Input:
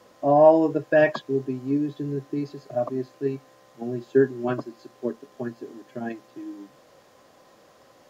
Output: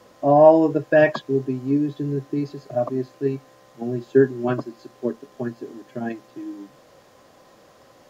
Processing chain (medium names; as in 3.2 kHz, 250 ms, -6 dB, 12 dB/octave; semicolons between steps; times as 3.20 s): bass shelf 140 Hz +5 dB; trim +2.5 dB